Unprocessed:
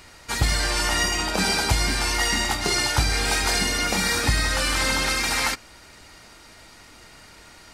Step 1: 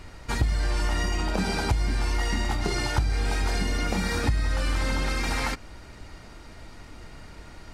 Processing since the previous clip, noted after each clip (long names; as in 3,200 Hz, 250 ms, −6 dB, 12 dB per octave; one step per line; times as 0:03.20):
spectral tilt −2.5 dB per octave
downward compressor 3 to 1, threshold −24 dBFS, peak gain reduction 12.5 dB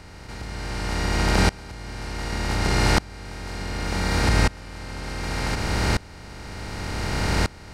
compressor on every frequency bin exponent 0.2
tremolo with a ramp in dB swelling 0.67 Hz, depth 25 dB
level +2 dB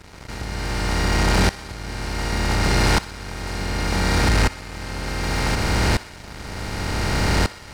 leveller curve on the samples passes 3
feedback echo with a high-pass in the loop 63 ms, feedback 72%, high-pass 510 Hz, level −17.5 dB
level −6.5 dB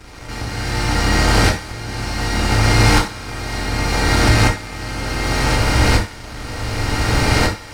convolution reverb, pre-delay 3 ms, DRR −1 dB
level +1.5 dB